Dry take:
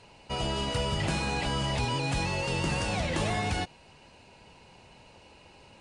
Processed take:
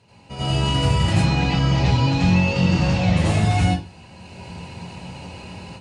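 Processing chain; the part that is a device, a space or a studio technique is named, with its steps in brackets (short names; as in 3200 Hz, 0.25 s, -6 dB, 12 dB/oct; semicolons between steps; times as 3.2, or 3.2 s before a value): 1.13–3.17 LPF 6100 Hz 24 dB/oct; tone controls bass +11 dB, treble +1 dB; far laptop microphone (reverb RT60 0.30 s, pre-delay 78 ms, DRR -6.5 dB; HPF 100 Hz 12 dB/oct; AGC gain up to 13 dB); gain -6 dB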